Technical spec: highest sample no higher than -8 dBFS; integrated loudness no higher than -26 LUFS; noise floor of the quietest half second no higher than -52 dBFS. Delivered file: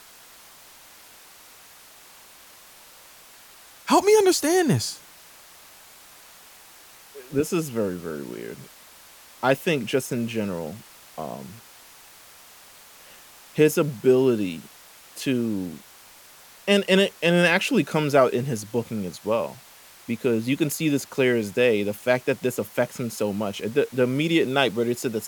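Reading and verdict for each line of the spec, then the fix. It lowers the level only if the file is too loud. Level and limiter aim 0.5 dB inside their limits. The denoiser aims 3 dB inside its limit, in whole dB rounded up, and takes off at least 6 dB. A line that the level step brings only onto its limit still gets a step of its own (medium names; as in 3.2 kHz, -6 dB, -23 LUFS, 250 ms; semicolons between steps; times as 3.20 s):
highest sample -5.5 dBFS: fail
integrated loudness -23.0 LUFS: fail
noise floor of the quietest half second -49 dBFS: fail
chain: trim -3.5 dB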